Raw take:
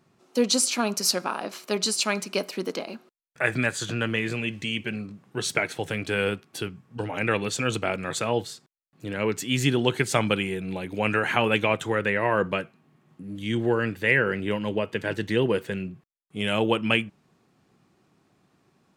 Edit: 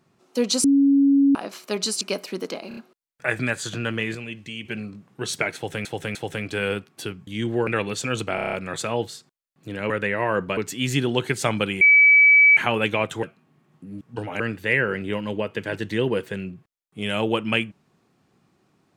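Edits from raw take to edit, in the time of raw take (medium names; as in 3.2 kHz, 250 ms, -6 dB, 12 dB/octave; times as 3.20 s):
0.64–1.35 s: bleep 278 Hz -13 dBFS
2.01–2.26 s: delete
2.93 s: stutter 0.03 s, 4 plays
4.31–4.81 s: gain -5.5 dB
5.71–6.01 s: loop, 3 plays
6.83–7.22 s: swap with 13.38–13.78 s
7.90 s: stutter 0.03 s, 7 plays
10.51–11.27 s: bleep 2.29 kHz -10 dBFS
11.93–12.60 s: move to 9.27 s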